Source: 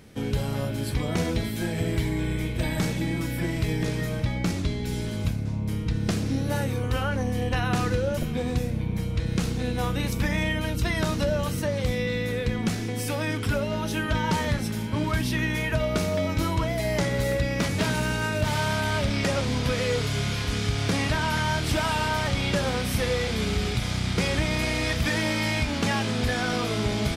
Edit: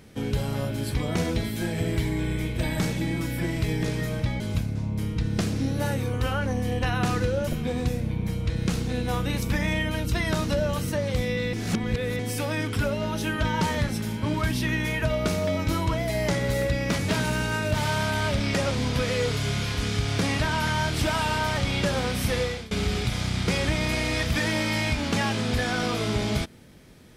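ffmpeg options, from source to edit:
ffmpeg -i in.wav -filter_complex "[0:a]asplit=5[link_01][link_02][link_03][link_04][link_05];[link_01]atrim=end=4.402[link_06];[link_02]atrim=start=5.098:end=12.232[link_07];[link_03]atrim=start=12.228:end=12.892,asetpts=PTS-STARTPTS,areverse[link_08];[link_04]atrim=start=12.888:end=23.41,asetpts=PTS-STARTPTS,afade=type=out:start_time=10.212:duration=0.31:silence=0.0668344[link_09];[link_05]atrim=start=23.41,asetpts=PTS-STARTPTS,afade=type=in:duration=0.004:curve=hsin:silence=0.0668344[link_10];[link_06][link_07]acrossfade=duration=0.004:curve1=hsin:curve2=hsin[link_11];[link_11][link_08]acrossfade=duration=0.004:curve1=hsin:curve2=hsin[link_12];[link_09][link_10]concat=n=2:v=0:a=1[link_13];[link_12][link_13]acrossfade=duration=0.004:curve1=hsin:curve2=hsin" out.wav

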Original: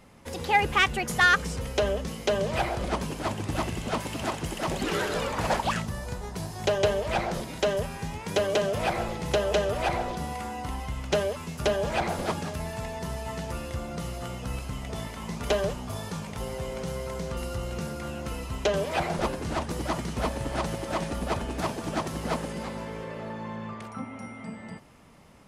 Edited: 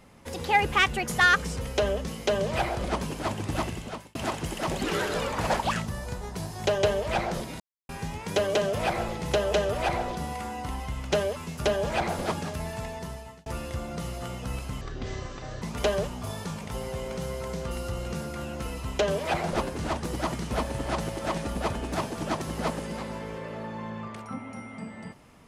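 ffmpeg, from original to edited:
ffmpeg -i in.wav -filter_complex "[0:a]asplit=7[link_01][link_02][link_03][link_04][link_05][link_06][link_07];[link_01]atrim=end=4.15,asetpts=PTS-STARTPTS,afade=type=out:start_time=3.61:duration=0.54[link_08];[link_02]atrim=start=4.15:end=7.6,asetpts=PTS-STARTPTS,afade=type=in:duration=0.004:curve=hsin,afade=type=out:start_time=3.446:duration=0.004:curve=hsin[link_09];[link_03]atrim=start=7.6:end=7.89,asetpts=PTS-STARTPTS,volume=0[link_10];[link_04]atrim=start=7.89:end=13.46,asetpts=PTS-STARTPTS,afade=type=in:duration=0.004:curve=hsin,afade=type=out:start_time=4.75:duration=0.82:curve=qsin[link_11];[link_05]atrim=start=13.46:end=14.814,asetpts=PTS-STARTPTS,afade=type=in:duration=0.004:curve=hsin[link_12];[link_06]atrim=start=14.81:end=15.28,asetpts=PTS-STARTPTS,asetrate=25578,aresample=44100,atrim=end_sample=35736,asetpts=PTS-STARTPTS[link_13];[link_07]atrim=start=15.276[link_14];[link_08][link_09][link_10][link_11][link_12]concat=n=5:v=0:a=1[link_15];[link_15][link_13]acrossfade=duration=0.004:curve1=hsin:curve2=hsin[link_16];[link_16][link_14]acrossfade=duration=0.004:curve1=hsin:curve2=hsin" out.wav

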